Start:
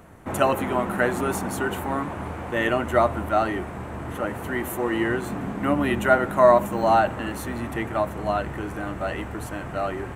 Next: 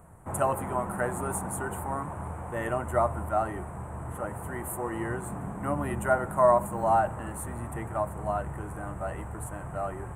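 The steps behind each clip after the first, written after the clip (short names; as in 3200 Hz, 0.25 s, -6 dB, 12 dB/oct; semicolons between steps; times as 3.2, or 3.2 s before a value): EQ curve 160 Hz 0 dB, 250 Hz -10 dB, 960 Hz -1 dB, 5000 Hz -23 dB, 8600 Hz +6 dB, 14000 Hz -5 dB; gain -2 dB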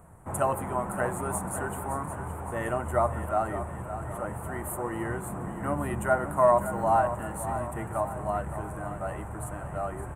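feedback echo 0.565 s, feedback 50%, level -11 dB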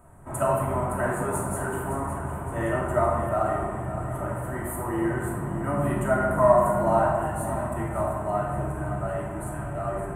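shoebox room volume 1100 m³, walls mixed, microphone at 2.8 m; gain -3 dB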